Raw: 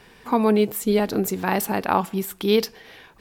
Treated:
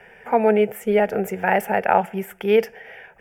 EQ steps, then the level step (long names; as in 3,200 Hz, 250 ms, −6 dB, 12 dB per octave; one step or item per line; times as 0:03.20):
three-way crossover with the lows and the highs turned down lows −13 dB, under 190 Hz, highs −16 dB, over 3,100 Hz
phaser with its sweep stopped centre 1,100 Hz, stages 6
+7.5 dB